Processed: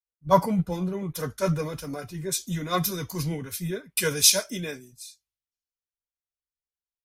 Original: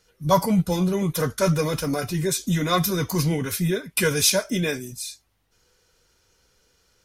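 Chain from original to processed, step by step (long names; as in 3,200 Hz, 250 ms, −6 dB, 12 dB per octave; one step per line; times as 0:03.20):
multiband upward and downward expander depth 100%
level −6.5 dB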